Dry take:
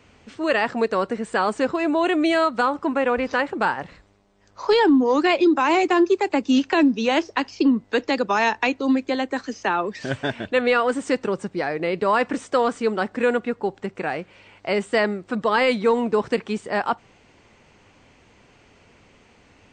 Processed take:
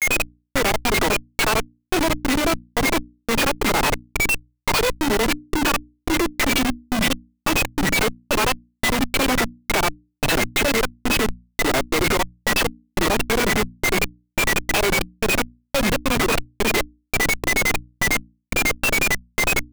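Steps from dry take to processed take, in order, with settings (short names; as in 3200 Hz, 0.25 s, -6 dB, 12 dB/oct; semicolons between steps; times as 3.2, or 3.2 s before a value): per-bin compression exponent 0.6; high shelf 3200 Hz +10 dB; notch 1900 Hz, Q 6.6; dispersion lows, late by 96 ms, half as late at 2900 Hz; limiter -12 dBFS, peak gain reduction 9 dB; whine 2300 Hz -24 dBFS; step gate "xx...xx.xxx.." 141 bpm -24 dB; grains 92 ms, grains 11/s, spray 14 ms, pitch spread up and down by 3 st; Schmitt trigger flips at -34 dBFS; notches 60/120/180/240/300 Hz; gain +9 dB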